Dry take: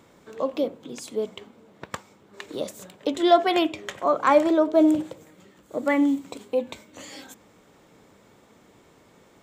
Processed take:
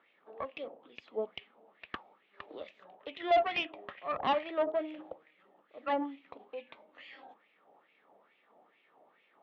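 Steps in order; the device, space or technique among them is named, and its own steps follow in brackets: 1.34–2.63 s: treble shelf 2.4 kHz +5.5 dB; wah-wah guitar rig (wah-wah 2.3 Hz 730–2500 Hz, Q 4.3; valve stage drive 29 dB, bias 0.65; cabinet simulation 100–3400 Hz, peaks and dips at 120 Hz -10 dB, 1 kHz -8 dB, 1.5 kHz -9 dB, 2.2 kHz -6 dB); trim +9 dB

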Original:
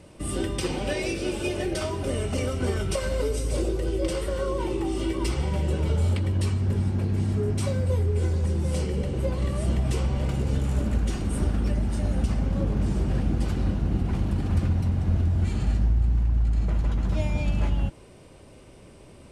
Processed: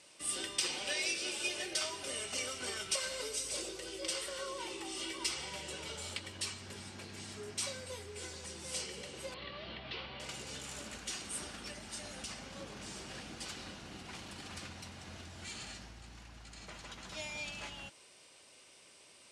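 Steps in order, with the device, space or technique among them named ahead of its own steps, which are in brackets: 9.34–10.20 s: steep low-pass 4.2 kHz 48 dB/octave; piezo pickup straight into a mixer (low-pass 6.1 kHz 12 dB/octave; differentiator); trim +7.5 dB

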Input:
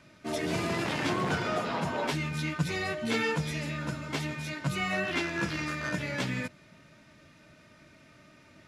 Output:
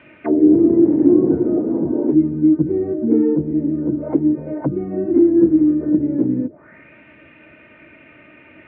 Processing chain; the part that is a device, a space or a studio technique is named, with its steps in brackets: envelope filter bass rig (touch-sensitive low-pass 320–3200 Hz down, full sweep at -30.5 dBFS; cabinet simulation 66–2300 Hz, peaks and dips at 110 Hz -6 dB, 170 Hz -9 dB, 320 Hz +6 dB, 480 Hz +4 dB, 1.2 kHz -4 dB); trim +9 dB

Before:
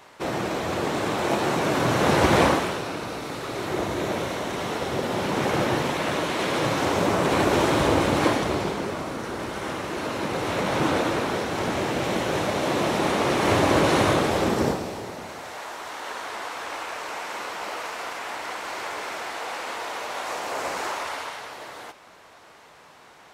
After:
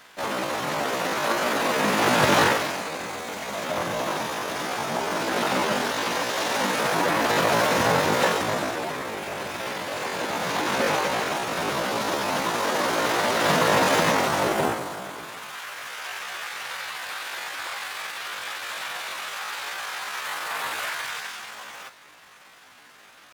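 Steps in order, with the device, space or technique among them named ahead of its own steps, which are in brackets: chipmunk voice (pitch shift +9 st)

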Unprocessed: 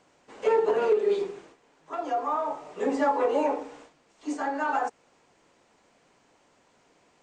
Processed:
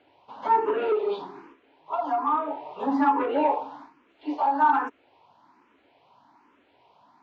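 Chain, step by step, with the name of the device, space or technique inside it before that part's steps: barber-pole phaser into a guitar amplifier (barber-pole phaser +1.2 Hz; saturation -20.5 dBFS, distortion -17 dB; cabinet simulation 76–3900 Hz, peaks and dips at 170 Hz -8 dB, 280 Hz +5 dB, 490 Hz -6 dB, 940 Hz +10 dB, 1.9 kHz -4 dB); trim +4.5 dB

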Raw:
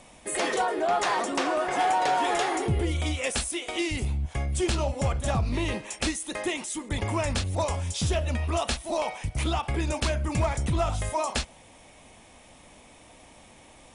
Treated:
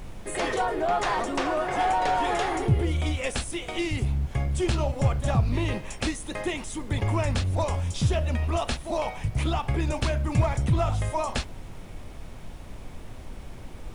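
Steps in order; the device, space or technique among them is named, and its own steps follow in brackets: car interior (peaking EQ 120 Hz +8 dB 0.71 oct; treble shelf 4.8 kHz -7 dB; brown noise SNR 11 dB)

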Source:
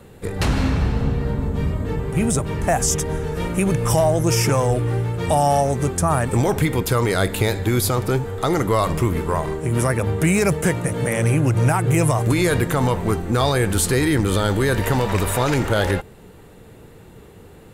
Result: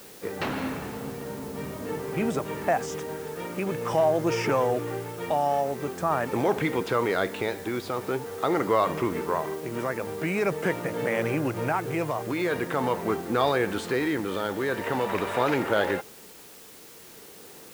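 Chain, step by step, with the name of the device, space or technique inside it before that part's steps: shortwave radio (band-pass 260–3000 Hz; tremolo 0.45 Hz, depth 40%; white noise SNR 21 dB); trim -2.5 dB

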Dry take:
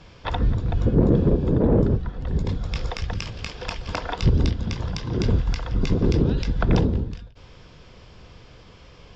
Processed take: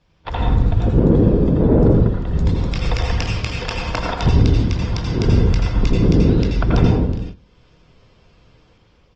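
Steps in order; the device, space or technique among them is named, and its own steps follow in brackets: speakerphone in a meeting room (reverberation RT60 0.75 s, pre-delay 77 ms, DRR -1 dB; speakerphone echo 110 ms, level -23 dB; level rider gain up to 5 dB; gate -28 dBFS, range -14 dB; Opus 20 kbps 48 kHz)

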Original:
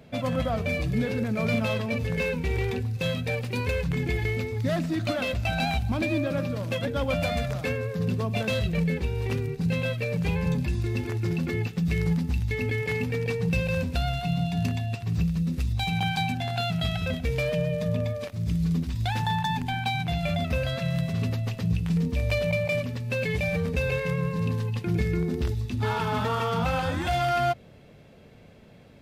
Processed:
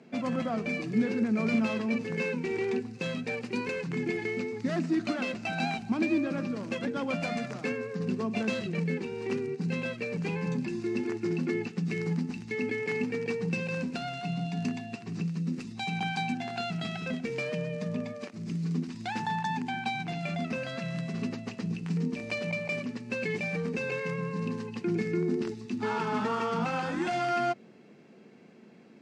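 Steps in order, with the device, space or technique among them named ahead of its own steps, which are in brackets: television speaker (cabinet simulation 180–7800 Hz, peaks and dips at 220 Hz +6 dB, 360 Hz +7 dB, 580 Hz -7 dB, 3.5 kHz -8 dB); trim -2.5 dB

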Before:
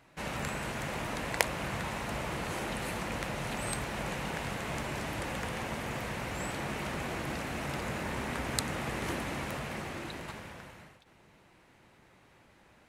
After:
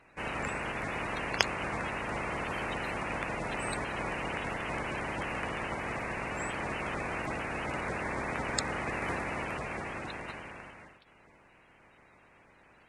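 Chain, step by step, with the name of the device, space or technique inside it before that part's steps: clip after many re-uploads (low-pass 8.3 kHz 24 dB/octave; coarse spectral quantiser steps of 30 dB); trim +1.5 dB

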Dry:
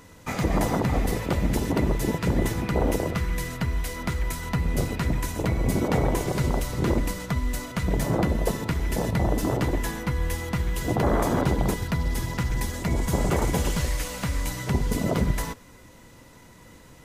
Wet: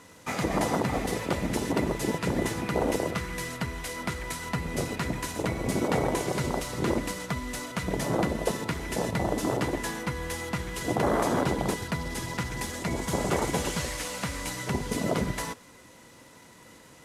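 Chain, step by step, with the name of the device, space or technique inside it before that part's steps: early wireless headset (high-pass 230 Hz 6 dB/octave; CVSD coder 64 kbps)

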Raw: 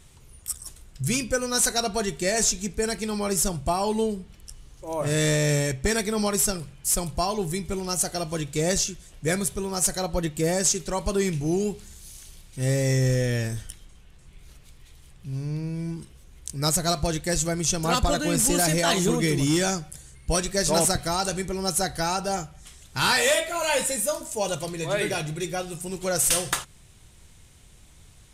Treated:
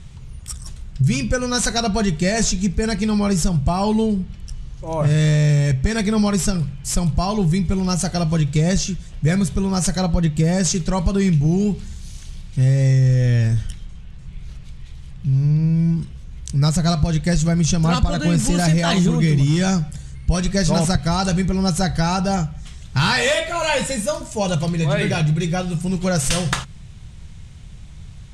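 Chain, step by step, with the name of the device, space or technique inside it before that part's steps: jukebox (low-pass 5.9 kHz 12 dB/octave; resonant low shelf 230 Hz +8.5 dB, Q 1.5; compression 4:1, threshold -20 dBFS, peak gain reduction 10 dB); trim +6 dB

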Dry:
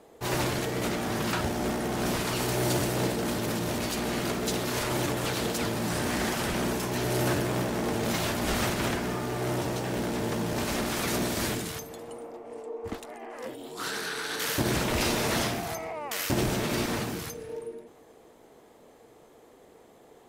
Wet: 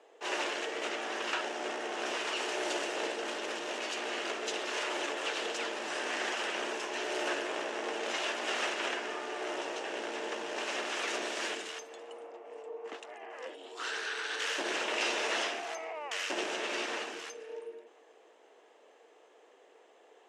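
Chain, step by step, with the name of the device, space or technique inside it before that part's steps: phone speaker on a table (cabinet simulation 380–7300 Hz, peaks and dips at 1.7 kHz +4 dB, 2.8 kHz +8 dB, 4.4 kHz -4 dB); trim -4.5 dB

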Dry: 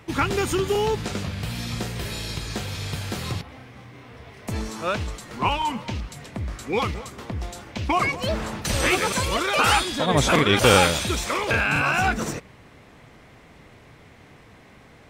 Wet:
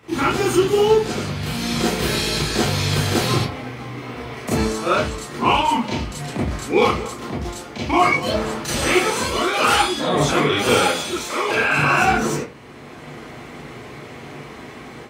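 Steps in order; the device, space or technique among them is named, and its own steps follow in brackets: far laptop microphone (reverberation RT60 0.30 s, pre-delay 27 ms, DRR -7 dB; high-pass 110 Hz 12 dB/octave; level rider gain up to 9 dB); 10.83–11.76 s: high-pass 140 Hz -> 330 Hz 6 dB/octave; trim -3.5 dB

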